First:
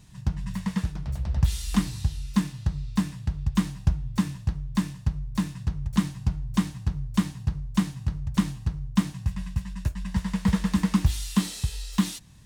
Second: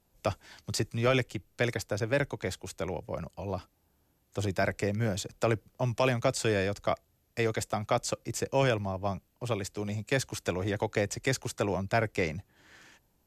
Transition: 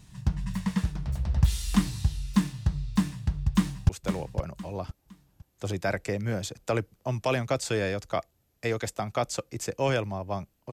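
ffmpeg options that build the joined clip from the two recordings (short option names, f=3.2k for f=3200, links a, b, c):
-filter_complex "[0:a]apad=whole_dur=10.72,atrim=end=10.72,atrim=end=3.892[a];[1:a]atrim=start=2.628:end=9.46[b];[a][b]acrossfade=d=0.004:c1=hsin:c2=hsin,asplit=2[c][d];[d]afade=t=in:st=3.52:d=0.01,afade=t=out:st=3.89:d=0.01,aecho=0:1:510|1020|1530|2040:0.446684|0.134005|0.0402015|0.0120605[e];[c][e]amix=inputs=2:normalize=0"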